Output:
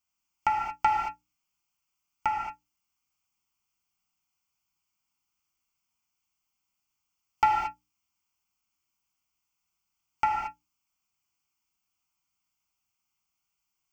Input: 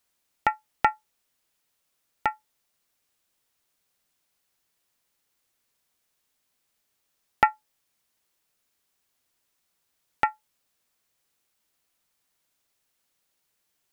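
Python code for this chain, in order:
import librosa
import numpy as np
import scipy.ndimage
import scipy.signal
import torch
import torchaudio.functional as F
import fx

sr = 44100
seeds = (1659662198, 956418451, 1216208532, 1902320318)

y = fx.hum_notches(x, sr, base_hz=60, count=5)
y = fx.noise_reduce_blind(y, sr, reduce_db=7)
y = 10.0 ** (-9.0 / 20.0) * np.tanh(y / 10.0 ** (-9.0 / 20.0))
y = fx.fixed_phaser(y, sr, hz=2600.0, stages=8)
y = fx.rev_gated(y, sr, seeds[0], gate_ms=250, shape='flat', drr_db=-1.0)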